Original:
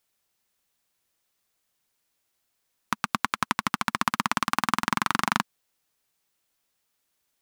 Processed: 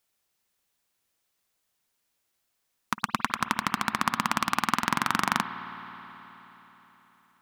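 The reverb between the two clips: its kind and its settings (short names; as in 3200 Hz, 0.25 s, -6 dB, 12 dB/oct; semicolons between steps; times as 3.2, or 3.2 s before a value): spring tank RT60 4 s, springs 53 ms, chirp 40 ms, DRR 10 dB; gain -1 dB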